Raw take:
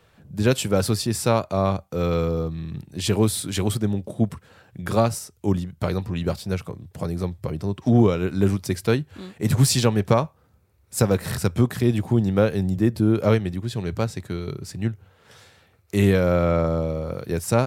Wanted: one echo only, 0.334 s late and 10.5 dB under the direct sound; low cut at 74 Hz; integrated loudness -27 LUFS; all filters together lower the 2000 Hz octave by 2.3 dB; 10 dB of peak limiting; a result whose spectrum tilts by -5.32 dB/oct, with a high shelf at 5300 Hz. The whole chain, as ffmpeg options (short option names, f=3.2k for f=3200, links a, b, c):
-af "highpass=74,equalizer=f=2k:t=o:g=-4,highshelf=f=5.3k:g=5.5,alimiter=limit=-14dB:level=0:latency=1,aecho=1:1:334:0.299,volume=-1dB"